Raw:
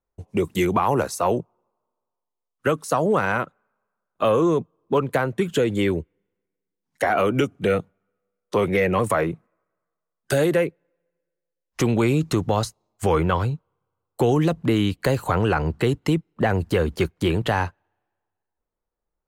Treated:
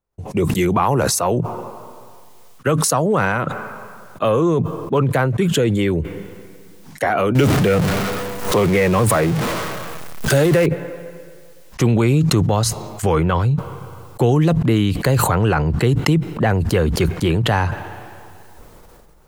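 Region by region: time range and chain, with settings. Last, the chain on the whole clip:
7.35–10.66 s: jump at every zero crossing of -24 dBFS + swell ahead of each attack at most 75 dB/s
whole clip: peaking EQ 130 Hz +6 dB 0.94 oct; decay stretcher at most 21 dB/s; trim +1.5 dB

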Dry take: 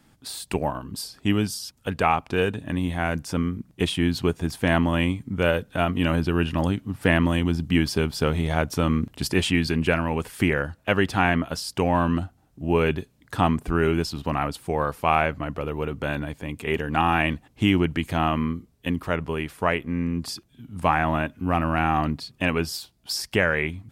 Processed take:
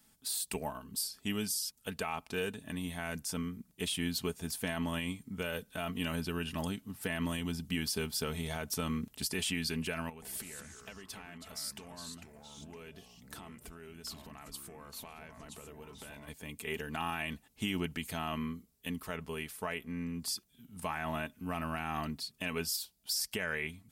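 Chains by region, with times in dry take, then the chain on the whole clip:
10.09–16.28 s: compression 16:1, threshold -33 dBFS + ever faster or slower copies 132 ms, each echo -3 st, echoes 3, each echo -6 dB
whole clip: pre-emphasis filter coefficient 0.8; comb 4.6 ms, depth 44%; peak limiter -23.5 dBFS

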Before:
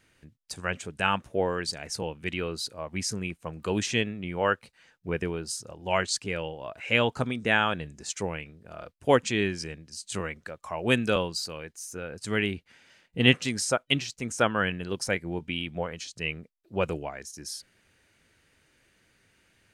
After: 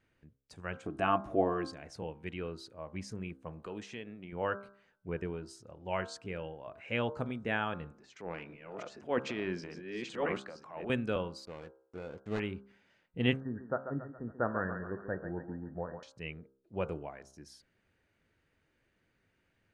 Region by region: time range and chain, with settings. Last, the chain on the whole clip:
0.86–1.68 s: upward compressor, threshold -29 dBFS + small resonant body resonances 310/690/1100 Hz, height 15 dB
3.66–4.33 s: high-pass 250 Hz 6 dB/octave + compression 2:1, threshold -33 dBFS
7.91–10.90 s: chunks repeated in reverse 587 ms, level -3 dB + band-pass 210–4900 Hz + transient shaper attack -8 dB, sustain +9 dB
11.45–12.40 s: dead-time distortion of 0.23 ms + Chebyshev low-pass 6.7 kHz + peaking EQ 650 Hz +4 dB 3 oct
13.40–16.03 s: brick-wall FIR low-pass 1.9 kHz + thinning echo 139 ms, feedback 51%, high-pass 330 Hz, level -7.5 dB
whole clip: low-pass 1.4 kHz 6 dB/octave; de-hum 66.54 Hz, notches 24; trim -6.5 dB

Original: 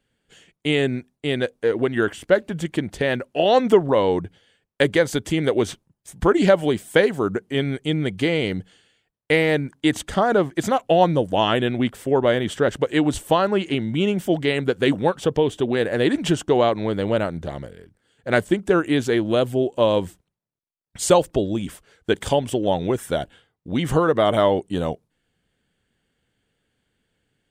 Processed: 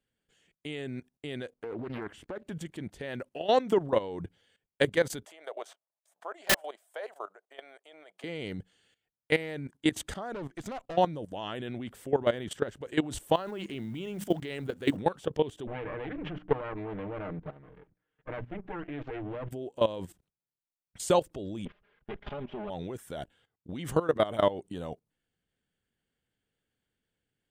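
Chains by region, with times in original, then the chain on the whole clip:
1.53–2.47 s: treble shelf 4.2 kHz -11 dB + compression 12:1, threshold -22 dBFS + loudspeaker Doppler distortion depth 0.59 ms
5.25–8.24 s: ladder high-pass 590 Hz, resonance 70% + peaking EQ 1.2 kHz +5.5 dB 1 oct + integer overflow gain 11.5 dB
10.32–10.97 s: treble shelf 10 kHz -8 dB + valve stage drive 20 dB, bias 0.55
13.35–14.97 s: companding laws mixed up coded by mu + hum notches 50/100/150/200/250 Hz
15.67–19.51 s: comb filter that takes the minimum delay 6.5 ms + low-pass 2.5 kHz 24 dB/octave + hum notches 60/120/180/240/300 Hz
21.65–22.70 s: comb filter that takes the minimum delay 4.9 ms + inverse Chebyshev low-pass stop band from 8.7 kHz, stop band 60 dB
whole clip: treble shelf 12 kHz +5.5 dB; level held to a coarse grid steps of 16 dB; trim -5 dB

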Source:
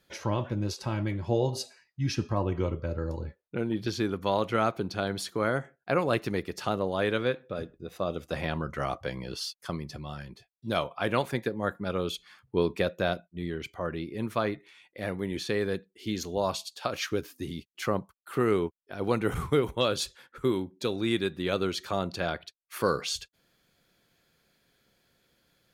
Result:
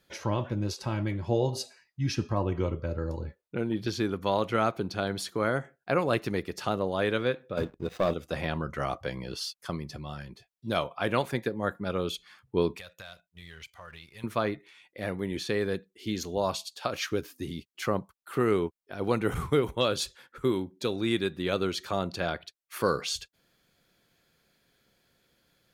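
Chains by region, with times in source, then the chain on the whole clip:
7.57–8.14 s: median filter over 5 samples + waveshaping leveller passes 2
12.78–14.24 s: amplifier tone stack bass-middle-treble 10-0-10 + waveshaping leveller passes 1 + compression, threshold -41 dBFS
whole clip: none

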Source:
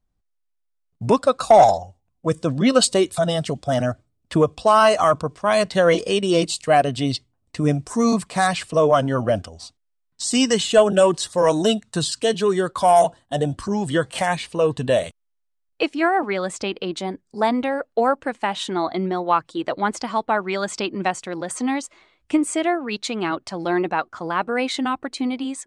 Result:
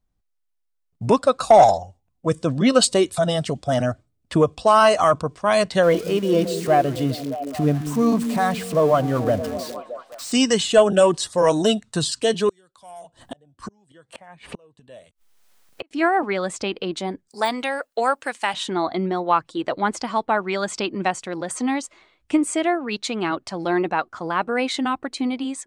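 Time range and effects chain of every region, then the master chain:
5.83–10.32 s: zero-crossing glitches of -15 dBFS + low-pass 1.2 kHz 6 dB/octave + repeats whose band climbs or falls 207 ms, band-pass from 210 Hz, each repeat 0.7 oct, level -6 dB
12.49–15.91 s: dynamic bell 5.5 kHz, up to -4 dB, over -42 dBFS, Q 1.4 + inverted gate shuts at -19 dBFS, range -35 dB + three bands compressed up and down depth 100%
17.28–18.54 s: tilt EQ +4 dB/octave + de-esser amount 60%
whole clip: none

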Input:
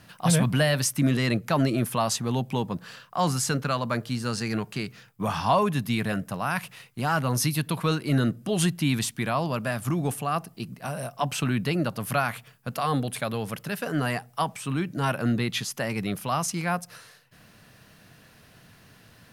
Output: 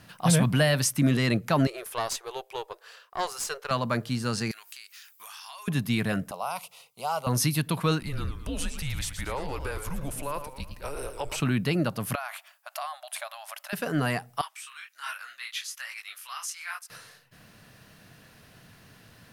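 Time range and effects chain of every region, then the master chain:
1.67–3.71 s: brick-wall FIR high-pass 360 Hz + valve stage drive 17 dB, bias 0.8
4.51–5.68 s: high-pass 1.2 kHz + tilt EQ +4.5 dB/octave + compression 4:1, threshold -44 dBFS
6.31–7.27 s: high-pass 370 Hz + static phaser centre 710 Hz, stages 4
8.00–11.40 s: compression 2.5:1, threshold -30 dBFS + frequency shift -150 Hz + modulated delay 113 ms, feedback 46%, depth 198 cents, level -9 dB
12.15–13.73 s: compression, threshold -29 dBFS + brick-wall FIR high-pass 570 Hz
14.41–16.90 s: high-pass 1.3 kHz 24 dB/octave + detune thickener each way 43 cents
whole clip: none

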